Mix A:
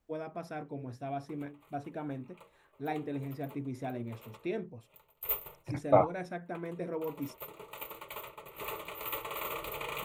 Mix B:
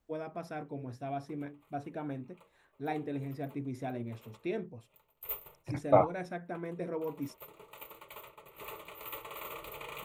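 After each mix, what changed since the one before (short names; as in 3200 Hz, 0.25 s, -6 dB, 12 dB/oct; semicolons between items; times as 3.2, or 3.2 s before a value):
background -5.5 dB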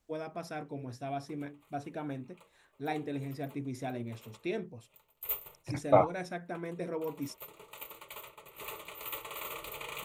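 master: add bell 6900 Hz +8 dB 2.4 oct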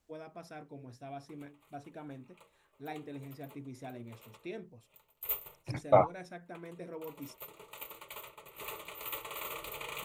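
first voice -7.5 dB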